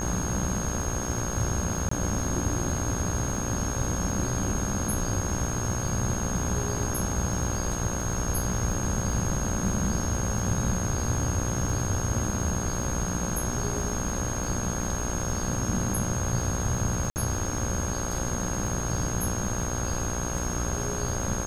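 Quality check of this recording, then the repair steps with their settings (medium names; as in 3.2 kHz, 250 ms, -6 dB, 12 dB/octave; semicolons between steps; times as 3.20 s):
buzz 60 Hz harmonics 28 -33 dBFS
crackle 27 per s -34 dBFS
whine 6.5 kHz -34 dBFS
1.89–1.91 s: dropout 24 ms
17.10–17.16 s: dropout 59 ms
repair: de-click; band-stop 6.5 kHz, Q 30; de-hum 60 Hz, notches 28; interpolate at 1.89 s, 24 ms; interpolate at 17.10 s, 59 ms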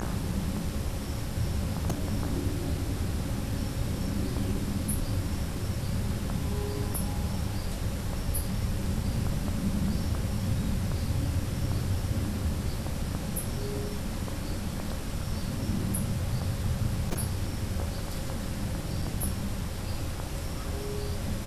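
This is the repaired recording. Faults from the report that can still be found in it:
nothing left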